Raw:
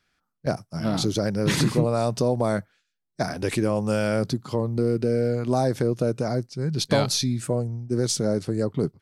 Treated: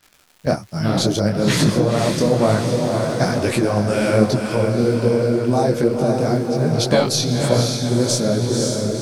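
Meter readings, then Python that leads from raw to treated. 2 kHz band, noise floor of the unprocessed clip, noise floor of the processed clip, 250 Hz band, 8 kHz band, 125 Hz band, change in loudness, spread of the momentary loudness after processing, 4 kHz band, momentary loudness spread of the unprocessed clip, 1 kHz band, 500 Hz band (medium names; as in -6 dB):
+7.0 dB, -78 dBFS, -53 dBFS, +6.5 dB, +6.5 dB, +6.0 dB, +6.5 dB, 3 LU, +6.5 dB, 7 LU, +7.0 dB, +6.5 dB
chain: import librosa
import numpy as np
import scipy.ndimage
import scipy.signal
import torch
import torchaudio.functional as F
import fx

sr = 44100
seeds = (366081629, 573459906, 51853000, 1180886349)

p1 = fx.fade_out_tail(x, sr, length_s=0.8)
p2 = fx.echo_diffused(p1, sr, ms=532, feedback_pct=56, wet_db=-4.5)
p3 = fx.dmg_crackle(p2, sr, seeds[0], per_s=150.0, level_db=-41.0)
p4 = fx.rider(p3, sr, range_db=4, speed_s=0.5)
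p5 = p3 + (p4 * librosa.db_to_amplitude(2.5))
p6 = fx.detune_double(p5, sr, cents=41)
y = p6 * librosa.db_to_amplitude(1.5)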